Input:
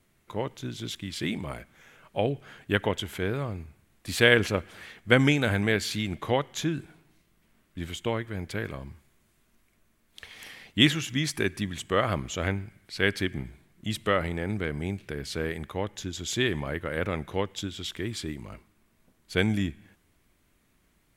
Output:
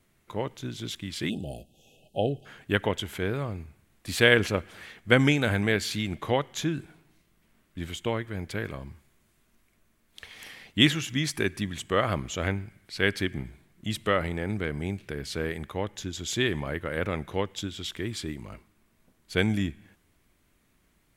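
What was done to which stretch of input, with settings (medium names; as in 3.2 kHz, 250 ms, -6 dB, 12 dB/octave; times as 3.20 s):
1.30–2.46 s: spectral selection erased 820–2500 Hz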